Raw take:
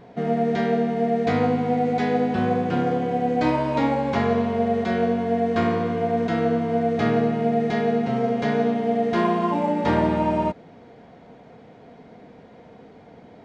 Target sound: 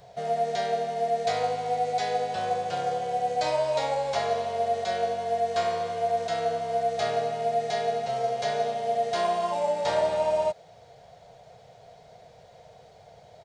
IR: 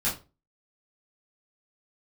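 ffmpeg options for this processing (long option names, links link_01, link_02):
-filter_complex "[0:a]firequalizer=gain_entry='entry(130,0);entry(250,-25);entry(420,-8);entry(620,5);entry(990,-5);entry(2200,-3);entry(4100,8);entry(7500,13)':delay=0.05:min_phase=1,acrossover=split=200[link_01][link_02];[link_01]acompressor=threshold=-49dB:ratio=6[link_03];[link_03][link_02]amix=inputs=2:normalize=0,volume=-2.5dB"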